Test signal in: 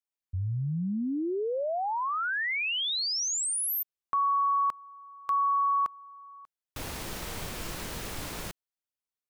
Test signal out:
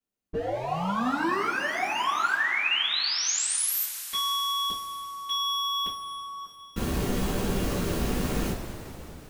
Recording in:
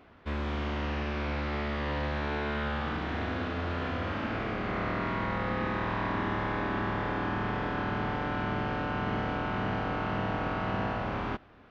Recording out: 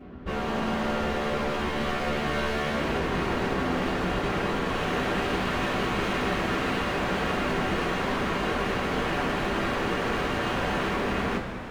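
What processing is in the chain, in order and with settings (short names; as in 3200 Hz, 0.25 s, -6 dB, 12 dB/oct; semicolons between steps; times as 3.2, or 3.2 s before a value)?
tilt shelf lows +7.5 dB, about 690 Hz; wavefolder -32.5 dBFS; two-slope reverb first 0.26 s, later 4.1 s, from -18 dB, DRR -9.5 dB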